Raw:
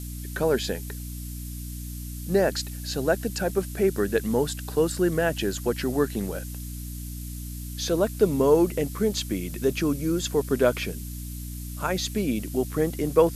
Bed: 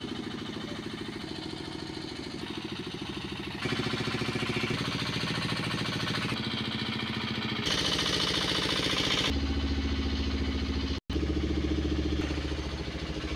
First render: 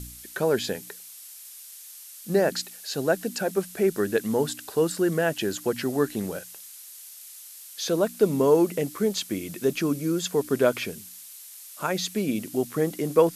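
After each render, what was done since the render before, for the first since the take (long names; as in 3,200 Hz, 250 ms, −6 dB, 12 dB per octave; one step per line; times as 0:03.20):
hum removal 60 Hz, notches 5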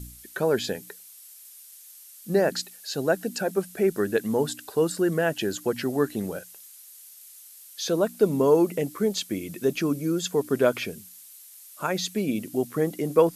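broadband denoise 6 dB, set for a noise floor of −45 dBFS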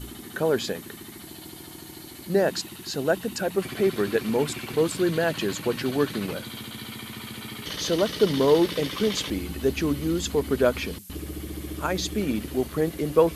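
mix in bed −5.5 dB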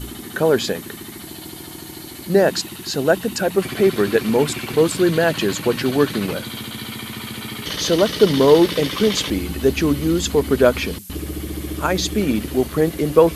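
level +7 dB
brickwall limiter −1 dBFS, peak gain reduction 1.5 dB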